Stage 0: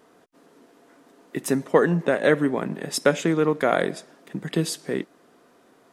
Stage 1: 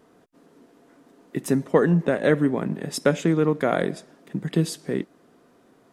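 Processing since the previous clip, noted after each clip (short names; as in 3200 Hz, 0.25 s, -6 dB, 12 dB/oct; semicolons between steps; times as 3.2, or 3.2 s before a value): low shelf 280 Hz +10 dB; gain -3.5 dB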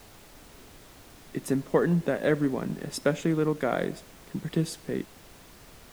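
added noise pink -46 dBFS; gain -5 dB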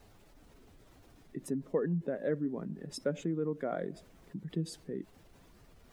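spectral contrast raised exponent 1.5; gain -8 dB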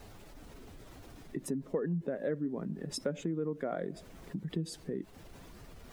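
compressor 2:1, threshold -46 dBFS, peak gain reduction 11 dB; gain +8 dB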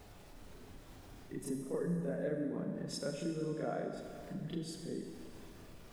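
reverse echo 34 ms -5 dB; Schroeder reverb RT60 2.2 s, combs from 29 ms, DRR 3.5 dB; gain -5 dB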